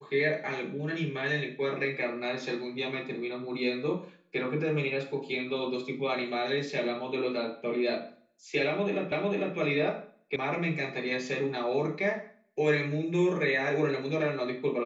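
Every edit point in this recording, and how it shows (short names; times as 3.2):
9.12 repeat of the last 0.45 s
10.36 sound cut off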